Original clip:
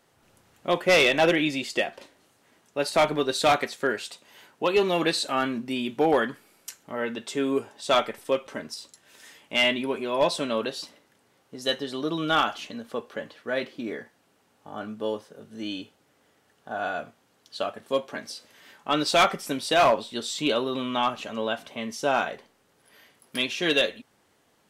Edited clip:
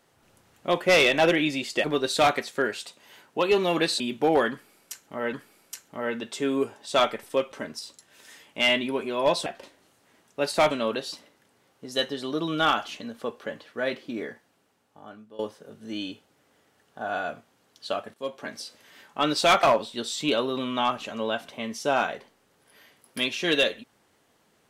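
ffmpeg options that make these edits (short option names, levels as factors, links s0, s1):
-filter_complex "[0:a]asplit=9[s0][s1][s2][s3][s4][s5][s6][s7][s8];[s0]atrim=end=1.842[s9];[s1]atrim=start=3.088:end=5.252[s10];[s2]atrim=start=5.768:end=7.102[s11];[s3]atrim=start=6.278:end=10.412[s12];[s4]atrim=start=1.838:end=3.092[s13];[s5]atrim=start=10.408:end=15.09,asetpts=PTS-STARTPTS,afade=t=out:st=3.582:d=1.1:silence=0.105925[s14];[s6]atrim=start=15.09:end=17.84,asetpts=PTS-STARTPTS,afade=t=in:d=0.004:c=hsin:silence=0.105925,afade=t=out:st=2.746:d=0.004:c=hsin:silence=0.199526[s15];[s7]atrim=start=17.84:end=19.332,asetpts=PTS-STARTPTS,afade=t=in:d=0.38:silence=0.199526[s16];[s8]atrim=start=19.808[s17];[s9][s10]acrossfade=d=0.004:c1=hsin:c2=hsin[s18];[s18][s11]acrossfade=d=0.004:c1=hsin:c2=hsin[s19];[s19][s12]acrossfade=d=0.004:c1=hsin:c2=hsin[s20];[s20][s13]acrossfade=d=0.004:c1=hsin:c2=hsin[s21];[s14][s15][s16]concat=n=3:v=0:a=1[s22];[s21][s22]acrossfade=d=0.004:c1=hsin:c2=hsin[s23];[s23][s17]acrossfade=d=0.004:c1=hsin:c2=hsin"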